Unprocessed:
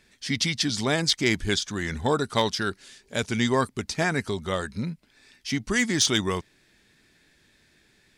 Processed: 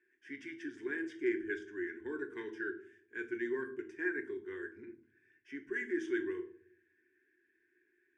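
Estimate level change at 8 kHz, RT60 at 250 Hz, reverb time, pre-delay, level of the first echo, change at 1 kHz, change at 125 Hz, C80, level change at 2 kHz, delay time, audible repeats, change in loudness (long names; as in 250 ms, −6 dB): below −35 dB, 0.85 s, 0.60 s, 5 ms, no echo audible, −25.5 dB, −34.0 dB, 17.0 dB, −10.5 dB, no echo audible, no echo audible, −14.0 dB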